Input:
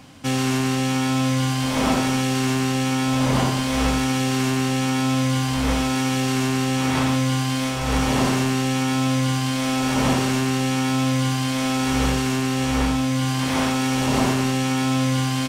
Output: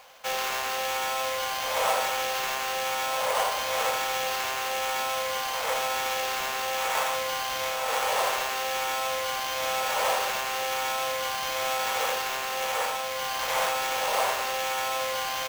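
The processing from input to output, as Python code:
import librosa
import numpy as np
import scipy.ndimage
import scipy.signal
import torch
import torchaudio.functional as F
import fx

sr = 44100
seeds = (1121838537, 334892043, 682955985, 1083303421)

y = scipy.signal.sosfilt(scipy.signal.cheby1(5, 1.0, 490.0, 'highpass', fs=sr, output='sos'), x)
y = fx.high_shelf(y, sr, hz=7000.0, db=-9.0)
y = fx.sample_hold(y, sr, seeds[0], rate_hz=9200.0, jitter_pct=0)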